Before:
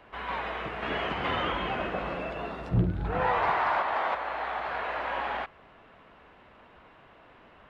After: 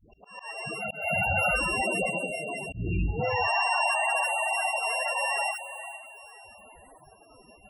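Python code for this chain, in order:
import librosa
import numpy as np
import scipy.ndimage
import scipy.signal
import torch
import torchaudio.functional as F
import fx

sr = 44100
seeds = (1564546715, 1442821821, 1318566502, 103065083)

p1 = np.r_[np.sort(x[:len(x) // 16 * 16].reshape(-1, 16), axis=1).ravel(), x[len(x) // 16 * 16:]]
p2 = fx.hum_notches(p1, sr, base_hz=60, count=9)
p3 = p2 + fx.echo_diffused(p2, sr, ms=475, feedback_pct=45, wet_db=-13.0, dry=0)
p4 = fx.clip_hard(p3, sr, threshold_db=-27.0, at=(2.83, 3.31), fade=0.02)
p5 = fx.dispersion(p4, sr, late='highs', ms=123.0, hz=480.0)
p6 = fx.comb(p5, sr, ms=1.4, depth=0.81, at=(0.79, 1.55), fade=0.02)
p7 = fx.level_steps(p6, sr, step_db=11)
p8 = p6 + (p7 * librosa.db_to_amplitude(3.0))
p9 = fx.spec_topn(p8, sr, count=16)
y = fx.auto_swell(p9, sr, attack_ms=268.0)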